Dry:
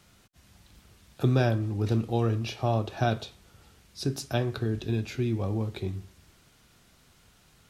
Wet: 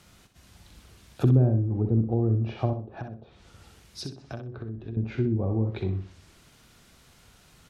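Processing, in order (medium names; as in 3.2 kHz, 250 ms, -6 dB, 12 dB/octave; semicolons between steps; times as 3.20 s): low-pass that closes with the level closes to 380 Hz, closed at -23.5 dBFS; 2.73–4.97 s: compression 6:1, threshold -38 dBFS, peak gain reduction 15 dB; feedback delay 63 ms, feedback 22%, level -8 dB; trim +3 dB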